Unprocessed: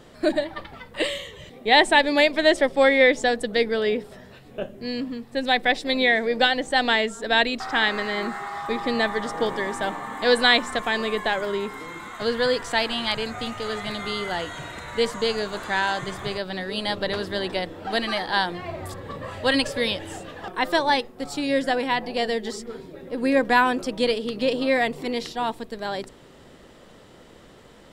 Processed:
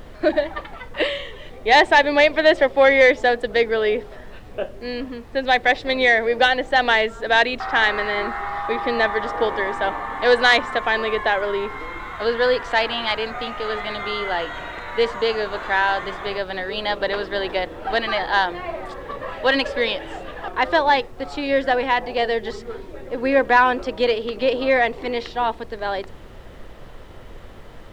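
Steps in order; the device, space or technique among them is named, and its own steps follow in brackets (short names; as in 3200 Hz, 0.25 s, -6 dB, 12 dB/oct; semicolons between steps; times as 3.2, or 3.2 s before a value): aircraft cabin announcement (BPF 370–3000 Hz; soft clip -8.5 dBFS, distortion -21 dB; brown noise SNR 18 dB); gain +5.5 dB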